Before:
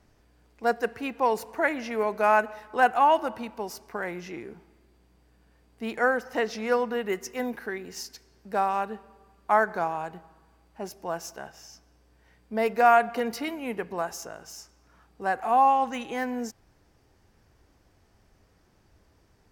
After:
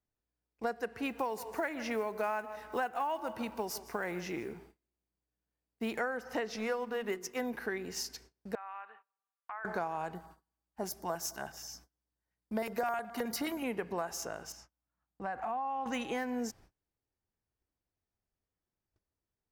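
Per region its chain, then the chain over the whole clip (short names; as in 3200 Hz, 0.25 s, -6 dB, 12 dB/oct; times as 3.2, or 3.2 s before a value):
1.05–6 block floating point 7-bit + high shelf 9800 Hz +5.5 dB + echo 0.156 s -18.5 dB
6.56–7.41 G.711 law mismatch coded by A + notches 60/120/180/240/300/360/420 Hz
8.55–9.65 compressor 4:1, threshold -35 dBFS + Butterworth band-pass 1800 Hz, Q 0.85 + air absorption 290 m
10.15–13.64 high shelf 8400 Hz +10 dB + LFO notch square 9.5 Hz 490–2600 Hz
14.52–15.86 LPF 1700 Hz 6 dB/oct + bell 410 Hz -10.5 dB 0.43 oct + compressor, threshold -32 dBFS
whole clip: gate -55 dBFS, range -29 dB; compressor 10:1, threshold -31 dBFS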